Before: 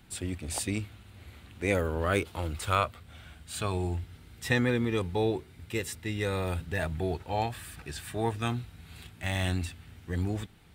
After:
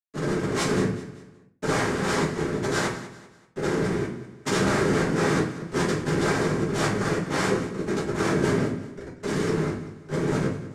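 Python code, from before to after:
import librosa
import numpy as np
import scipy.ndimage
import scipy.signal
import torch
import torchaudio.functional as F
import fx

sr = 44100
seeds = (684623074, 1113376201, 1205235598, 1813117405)

p1 = fx.env_lowpass(x, sr, base_hz=2700.0, full_db=-22.5)
p2 = fx.high_shelf(p1, sr, hz=4300.0, db=-6.0)
p3 = fx.rider(p2, sr, range_db=5, speed_s=0.5)
p4 = p2 + (p3 * 10.0 ** (0.5 / 20.0))
p5 = fx.schmitt(p4, sr, flips_db=-31.0)
p6 = fx.noise_vocoder(p5, sr, seeds[0], bands=3)
p7 = p6 + fx.echo_feedback(p6, sr, ms=192, feedback_pct=38, wet_db=-15.0, dry=0)
p8 = fx.room_shoebox(p7, sr, seeds[1], volume_m3=40.0, walls='mixed', distance_m=1.5)
y = p8 * 10.0 ** (-6.0 / 20.0)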